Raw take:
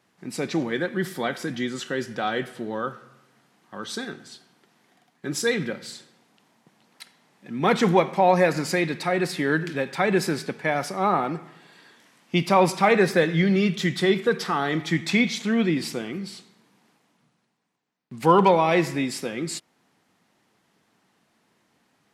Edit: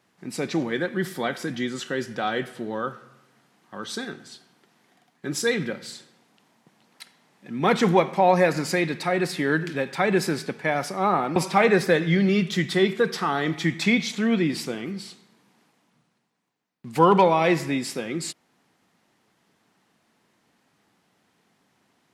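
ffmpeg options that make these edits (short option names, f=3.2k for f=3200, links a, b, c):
-filter_complex "[0:a]asplit=2[a][b];[a]atrim=end=11.362[c];[b]atrim=start=12.628[d];[c][d]acrossfade=d=0.004:c1=hsin:c2=hsin"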